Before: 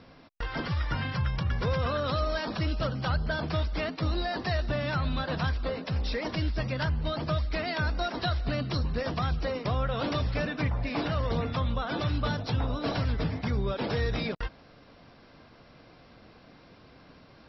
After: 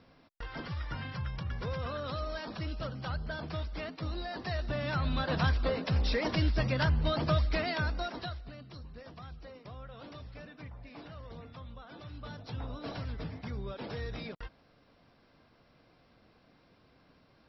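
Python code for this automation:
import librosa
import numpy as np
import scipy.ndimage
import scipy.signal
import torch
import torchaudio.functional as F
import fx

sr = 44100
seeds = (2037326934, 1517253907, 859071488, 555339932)

y = fx.gain(x, sr, db=fx.line((4.27, -8.0), (5.47, 1.0), (7.47, 1.0), (8.17, -7.0), (8.53, -18.0), (12.05, -18.0), (12.63, -10.0)))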